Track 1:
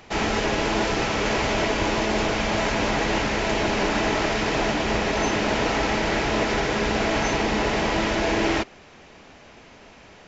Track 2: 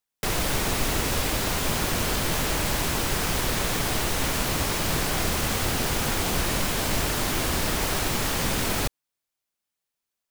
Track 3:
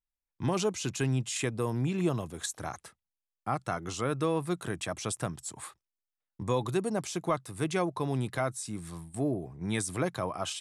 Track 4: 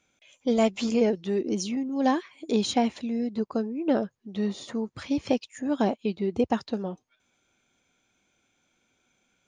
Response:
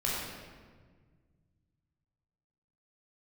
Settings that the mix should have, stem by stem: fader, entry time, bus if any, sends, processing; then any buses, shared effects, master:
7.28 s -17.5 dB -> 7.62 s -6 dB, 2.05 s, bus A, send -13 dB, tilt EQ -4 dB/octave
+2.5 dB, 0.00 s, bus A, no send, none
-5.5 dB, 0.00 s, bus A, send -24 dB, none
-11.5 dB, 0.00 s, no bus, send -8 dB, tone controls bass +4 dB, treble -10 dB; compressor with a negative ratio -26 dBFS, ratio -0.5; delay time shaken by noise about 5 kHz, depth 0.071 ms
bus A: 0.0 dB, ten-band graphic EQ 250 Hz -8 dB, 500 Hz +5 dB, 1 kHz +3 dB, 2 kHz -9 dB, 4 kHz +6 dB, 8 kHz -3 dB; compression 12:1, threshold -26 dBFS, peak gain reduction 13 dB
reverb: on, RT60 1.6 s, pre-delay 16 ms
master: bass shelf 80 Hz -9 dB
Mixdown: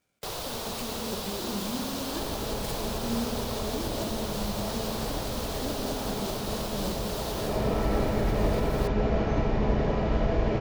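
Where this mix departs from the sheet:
stem 2 +2.5 dB -> -8.5 dB; stem 3: muted

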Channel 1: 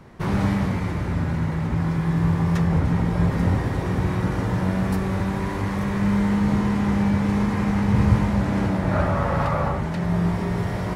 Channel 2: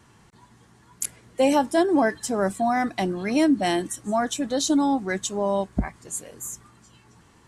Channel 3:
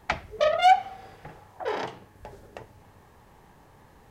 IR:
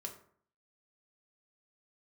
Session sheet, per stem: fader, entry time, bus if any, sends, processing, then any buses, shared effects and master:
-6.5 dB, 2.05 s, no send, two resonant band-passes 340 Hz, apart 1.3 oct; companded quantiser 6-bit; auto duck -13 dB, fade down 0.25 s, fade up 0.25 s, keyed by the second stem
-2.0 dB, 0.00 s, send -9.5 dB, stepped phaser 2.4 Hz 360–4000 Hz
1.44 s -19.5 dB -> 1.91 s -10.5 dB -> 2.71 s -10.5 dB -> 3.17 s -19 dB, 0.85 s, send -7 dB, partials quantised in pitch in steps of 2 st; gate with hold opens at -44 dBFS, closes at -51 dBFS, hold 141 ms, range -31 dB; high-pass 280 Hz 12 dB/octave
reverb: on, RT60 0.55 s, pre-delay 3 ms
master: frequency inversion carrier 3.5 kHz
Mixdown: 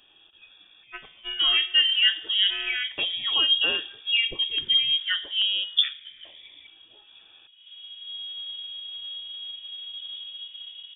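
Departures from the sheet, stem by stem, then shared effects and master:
stem 1 -6.5 dB -> -12.5 dB; reverb return +9.5 dB

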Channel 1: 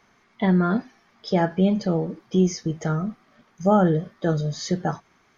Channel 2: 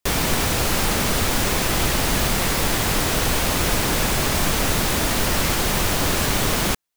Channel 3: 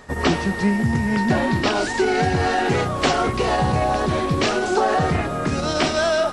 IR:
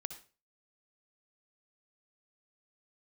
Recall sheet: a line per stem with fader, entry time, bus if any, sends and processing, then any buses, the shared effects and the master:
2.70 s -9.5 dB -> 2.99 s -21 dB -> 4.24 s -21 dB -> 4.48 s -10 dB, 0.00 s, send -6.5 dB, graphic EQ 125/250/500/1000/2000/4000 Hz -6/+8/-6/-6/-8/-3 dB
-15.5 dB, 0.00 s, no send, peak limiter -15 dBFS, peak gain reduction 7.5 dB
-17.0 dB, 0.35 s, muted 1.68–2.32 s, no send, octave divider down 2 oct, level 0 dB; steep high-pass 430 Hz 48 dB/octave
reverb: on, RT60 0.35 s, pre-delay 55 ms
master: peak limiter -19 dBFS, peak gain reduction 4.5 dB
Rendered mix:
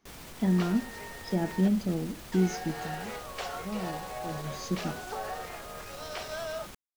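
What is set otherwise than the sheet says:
stem 2 -15.5 dB -> -21.5 dB; master: missing peak limiter -19 dBFS, peak gain reduction 4.5 dB

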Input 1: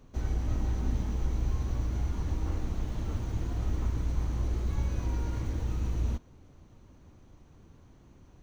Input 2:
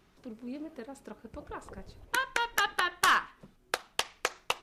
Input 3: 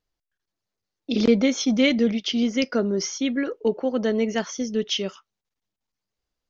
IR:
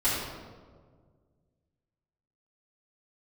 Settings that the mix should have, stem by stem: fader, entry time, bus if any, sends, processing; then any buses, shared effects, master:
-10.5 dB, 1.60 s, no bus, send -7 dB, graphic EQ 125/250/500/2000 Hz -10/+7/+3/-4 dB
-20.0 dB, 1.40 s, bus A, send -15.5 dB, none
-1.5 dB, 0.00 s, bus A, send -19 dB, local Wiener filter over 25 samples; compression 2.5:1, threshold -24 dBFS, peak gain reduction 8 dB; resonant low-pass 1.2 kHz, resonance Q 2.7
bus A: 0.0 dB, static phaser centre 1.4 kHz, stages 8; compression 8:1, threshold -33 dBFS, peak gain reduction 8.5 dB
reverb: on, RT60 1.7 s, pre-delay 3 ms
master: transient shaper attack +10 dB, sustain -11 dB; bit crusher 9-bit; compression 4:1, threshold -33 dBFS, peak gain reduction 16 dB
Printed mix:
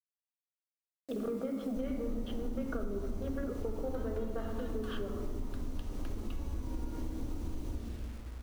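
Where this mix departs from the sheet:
stem 2: entry 1.40 s -> 1.80 s; master: missing transient shaper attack +10 dB, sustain -11 dB

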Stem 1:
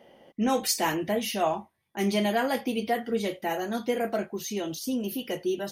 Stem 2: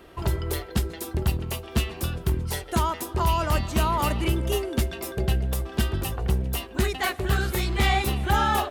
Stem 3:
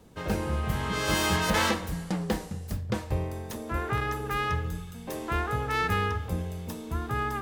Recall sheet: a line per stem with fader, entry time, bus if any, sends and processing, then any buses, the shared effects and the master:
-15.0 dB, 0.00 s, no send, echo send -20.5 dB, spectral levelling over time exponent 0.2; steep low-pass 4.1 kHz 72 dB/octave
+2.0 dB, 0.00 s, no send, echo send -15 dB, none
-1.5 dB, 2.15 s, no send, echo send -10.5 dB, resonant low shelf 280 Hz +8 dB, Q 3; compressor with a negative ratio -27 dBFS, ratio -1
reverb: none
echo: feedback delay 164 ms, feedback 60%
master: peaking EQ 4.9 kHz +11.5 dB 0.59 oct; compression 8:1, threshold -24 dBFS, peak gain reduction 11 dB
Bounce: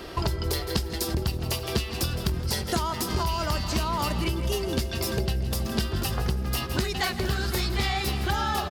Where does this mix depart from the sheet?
stem 1: missing spectral levelling over time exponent 0.2; stem 2 +2.0 dB -> +9.5 dB

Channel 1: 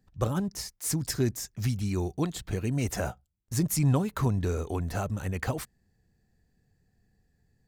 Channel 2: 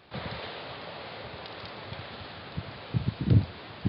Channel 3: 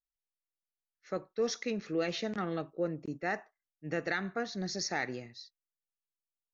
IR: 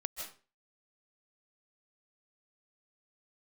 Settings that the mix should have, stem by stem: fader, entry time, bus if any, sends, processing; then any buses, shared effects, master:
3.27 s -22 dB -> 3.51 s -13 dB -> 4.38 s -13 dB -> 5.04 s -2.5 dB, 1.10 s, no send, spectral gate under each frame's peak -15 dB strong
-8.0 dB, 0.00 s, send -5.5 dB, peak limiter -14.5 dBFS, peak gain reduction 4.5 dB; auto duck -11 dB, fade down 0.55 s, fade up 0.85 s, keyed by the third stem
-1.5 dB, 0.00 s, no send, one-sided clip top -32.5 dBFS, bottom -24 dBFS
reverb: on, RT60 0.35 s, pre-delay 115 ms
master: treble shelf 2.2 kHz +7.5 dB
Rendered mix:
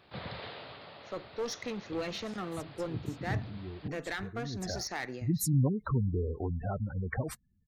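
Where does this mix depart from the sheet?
stem 1: entry 1.10 s -> 1.70 s; master: missing treble shelf 2.2 kHz +7.5 dB

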